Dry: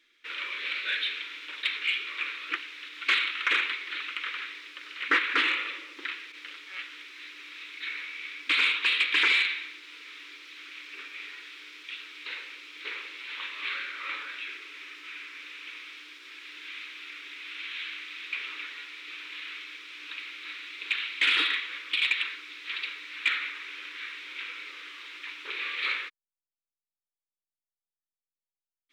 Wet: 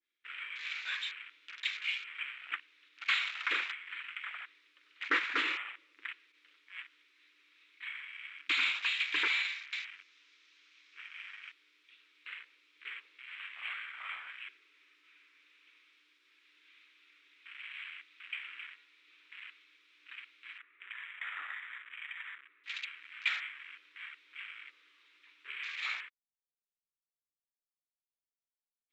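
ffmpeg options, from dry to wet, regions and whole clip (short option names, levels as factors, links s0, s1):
-filter_complex "[0:a]asettb=1/sr,asplit=3[s0][s1][s2];[s0]atrim=end=9.454[s3];[s1]atrim=start=9.45:end=11.52,asetpts=PTS-STARTPTS,afade=t=in:d=0.004:c=qsin,afade=t=out:st=2.066:d=0.004:c=qsin,lowpass=f=6300:t=q:w=2.1,equalizer=f=200:t=o:w=0.93:g=-14,aecho=1:1:277:0.708,atrim=end_sample=91287[s4];[s2]atrim=start=11.516[s5];[s3][s4]acrossfade=d=0.004:c1=hsin:c2=qsin[s6];[s6][s5]acrossfade=d=0.004:c1=qsin:c2=hsin,asettb=1/sr,asplit=3[s7][s8][s9];[s7]atrim=end=20.584[s10];[s8]atrim=start=20.58:end=22.64,asetpts=PTS-STARTPTS,afade=t=in:d=0.004:c=qsin,afade=t=out:st=2.056:d=0.004:c=qsin,acompressor=threshold=0.0282:ratio=4:attack=3.2:release=140:knee=1:detection=peak,highpass=350,equalizer=f=400:t=q:w=4:g=5,equalizer=f=670:t=q:w=4:g=-7,equalizer=f=1200:t=q:w=4:g=7,equalizer=f=1800:t=q:w=4:g=5,lowpass=f=2200:w=0.5412,lowpass=f=2200:w=1.3066[s11];[s9]atrim=start=22.636[s12];[s10][s11]acrossfade=d=0.004:c1=hsin:c2=qsin[s13];[s13][s12]acrossfade=d=0.004:c1=qsin:c2=hsin,afwtdn=0.0158,adynamicequalizer=threshold=0.0141:dfrequency=1700:dqfactor=0.7:tfrequency=1700:tqfactor=0.7:attack=5:release=100:ratio=0.375:range=2:mode=cutabove:tftype=highshelf,volume=0.531"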